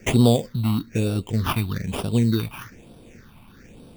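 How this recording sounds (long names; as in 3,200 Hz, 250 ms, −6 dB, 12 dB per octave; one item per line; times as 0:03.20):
aliases and images of a low sample rate 4,100 Hz, jitter 0%
phaser sweep stages 6, 1.1 Hz, lowest notch 450–1,900 Hz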